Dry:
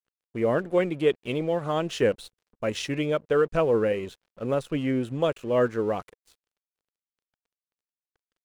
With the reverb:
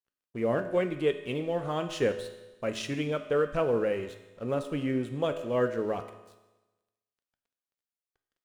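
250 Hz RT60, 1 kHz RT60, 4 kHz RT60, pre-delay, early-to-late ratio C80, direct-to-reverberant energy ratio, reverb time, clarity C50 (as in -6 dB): 1.1 s, 1.1 s, 1.1 s, 3 ms, 12.0 dB, 7.0 dB, 1.1 s, 10.5 dB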